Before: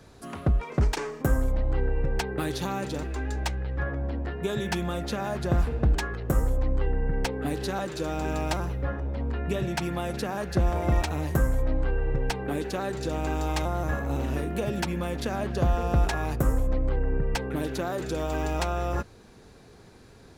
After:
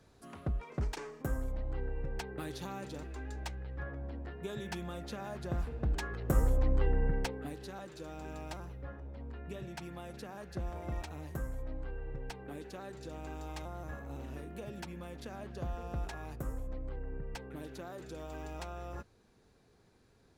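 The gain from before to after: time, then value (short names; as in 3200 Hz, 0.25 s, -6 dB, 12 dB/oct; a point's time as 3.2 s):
5.76 s -11.5 dB
6.44 s -3 dB
7.06 s -3 dB
7.58 s -15 dB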